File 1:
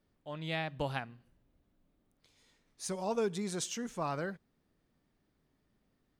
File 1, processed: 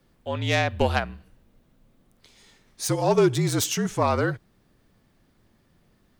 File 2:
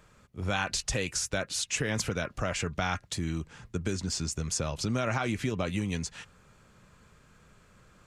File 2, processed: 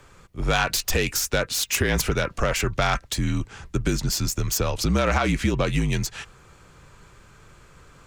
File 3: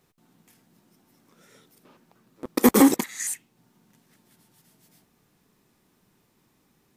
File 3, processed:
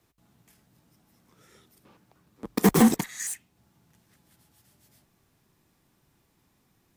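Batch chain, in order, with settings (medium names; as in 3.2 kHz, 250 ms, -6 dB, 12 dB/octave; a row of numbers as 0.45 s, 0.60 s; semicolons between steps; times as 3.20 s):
self-modulated delay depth 0.056 ms; frequency shift -48 Hz; normalise loudness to -24 LUFS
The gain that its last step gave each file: +13.5 dB, +8.5 dB, -2.0 dB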